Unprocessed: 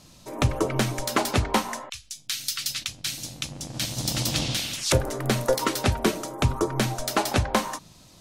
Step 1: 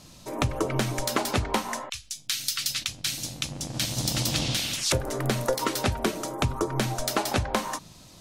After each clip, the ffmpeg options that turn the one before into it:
ffmpeg -i in.wav -af "acompressor=threshold=-25dB:ratio=3,volume=2dB" out.wav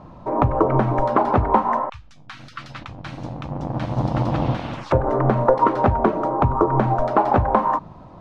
ffmpeg -i in.wav -filter_complex "[0:a]asplit=2[link_01][link_02];[link_02]alimiter=limit=-15.5dB:level=0:latency=1:release=126,volume=0.5dB[link_03];[link_01][link_03]amix=inputs=2:normalize=0,lowpass=frequency=980:width_type=q:width=2.1,volume=2.5dB" out.wav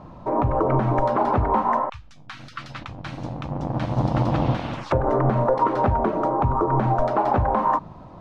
ffmpeg -i in.wav -af "alimiter=limit=-10dB:level=0:latency=1:release=65" out.wav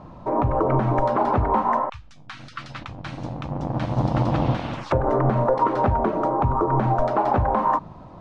ffmpeg -i in.wav -af "aresample=22050,aresample=44100" out.wav

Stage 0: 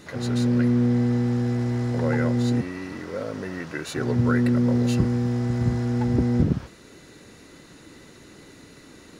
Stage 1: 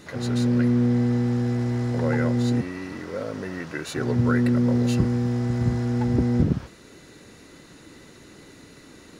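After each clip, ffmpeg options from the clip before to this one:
ffmpeg -i in.wav -af anull out.wav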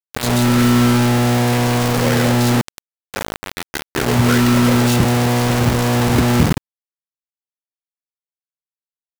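ffmpeg -i in.wav -af "acrusher=bits=3:mix=0:aa=0.000001,volume=6dB" out.wav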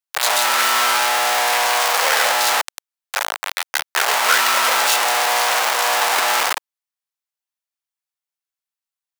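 ffmpeg -i in.wav -af "highpass=frequency=710:width=0.5412,highpass=frequency=710:width=1.3066,volume=5.5dB" out.wav

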